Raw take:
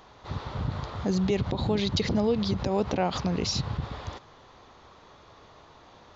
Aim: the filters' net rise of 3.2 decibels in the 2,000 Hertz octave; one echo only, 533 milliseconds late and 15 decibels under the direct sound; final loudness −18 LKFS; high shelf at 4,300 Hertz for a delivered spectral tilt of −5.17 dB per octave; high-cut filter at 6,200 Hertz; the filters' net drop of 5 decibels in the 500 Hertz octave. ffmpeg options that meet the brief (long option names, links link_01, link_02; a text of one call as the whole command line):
ffmpeg -i in.wav -af "lowpass=6200,equalizer=frequency=500:width_type=o:gain=-6.5,equalizer=frequency=2000:width_type=o:gain=5,highshelf=frequency=4300:gain=-3,aecho=1:1:533:0.178,volume=12dB" out.wav